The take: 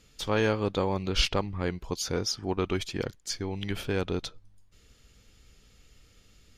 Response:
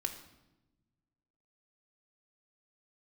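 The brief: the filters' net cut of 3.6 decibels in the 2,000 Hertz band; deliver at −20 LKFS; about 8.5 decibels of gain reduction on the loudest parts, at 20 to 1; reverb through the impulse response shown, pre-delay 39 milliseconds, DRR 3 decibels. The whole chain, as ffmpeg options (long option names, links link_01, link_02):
-filter_complex "[0:a]equalizer=frequency=2000:width_type=o:gain=-5,acompressor=threshold=-28dB:ratio=20,asplit=2[link_01][link_02];[1:a]atrim=start_sample=2205,adelay=39[link_03];[link_02][link_03]afir=irnorm=-1:irlink=0,volume=-4dB[link_04];[link_01][link_04]amix=inputs=2:normalize=0,volume=13dB"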